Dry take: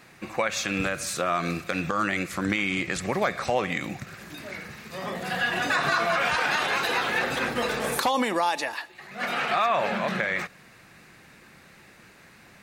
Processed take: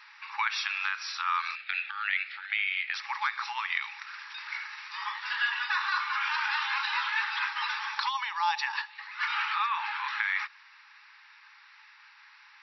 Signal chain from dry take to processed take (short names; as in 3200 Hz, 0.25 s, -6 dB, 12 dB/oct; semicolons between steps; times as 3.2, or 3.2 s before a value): 1.55–2.94 fixed phaser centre 2500 Hz, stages 4; vocal rider within 4 dB 0.5 s; FFT band-pass 810–5800 Hz; gain -1.5 dB